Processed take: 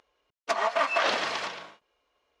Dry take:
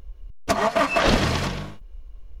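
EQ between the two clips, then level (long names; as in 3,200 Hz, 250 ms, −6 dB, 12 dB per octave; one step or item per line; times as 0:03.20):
high-pass filter 660 Hz 12 dB per octave
high-frequency loss of the air 90 metres
high-shelf EQ 8,900 Hz +4 dB
−2.5 dB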